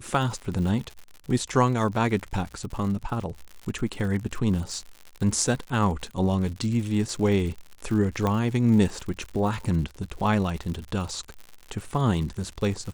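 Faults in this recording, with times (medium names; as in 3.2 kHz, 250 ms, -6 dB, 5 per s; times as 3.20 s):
crackle 100 per s -33 dBFS
8.27 s: pop -13 dBFS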